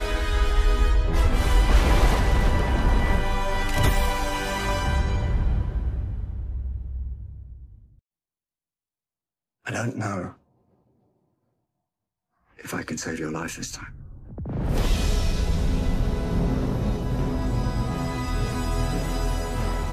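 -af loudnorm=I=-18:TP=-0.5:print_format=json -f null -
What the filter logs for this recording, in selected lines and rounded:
"input_i" : "-26.2",
"input_tp" : "-7.3",
"input_lra" : "13.4",
"input_thresh" : "-36.8",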